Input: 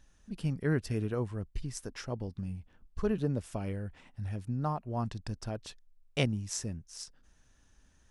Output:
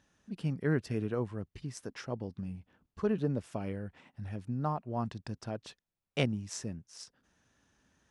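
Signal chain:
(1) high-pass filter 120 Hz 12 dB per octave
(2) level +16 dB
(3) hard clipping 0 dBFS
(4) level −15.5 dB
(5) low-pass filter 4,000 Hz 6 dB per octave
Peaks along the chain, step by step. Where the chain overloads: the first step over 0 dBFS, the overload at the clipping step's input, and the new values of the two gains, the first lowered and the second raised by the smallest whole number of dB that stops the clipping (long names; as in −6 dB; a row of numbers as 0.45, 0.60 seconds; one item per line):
−12.5, +3.5, 0.0, −15.5, −16.0 dBFS
step 2, 3.5 dB
step 2 +12 dB, step 4 −11.5 dB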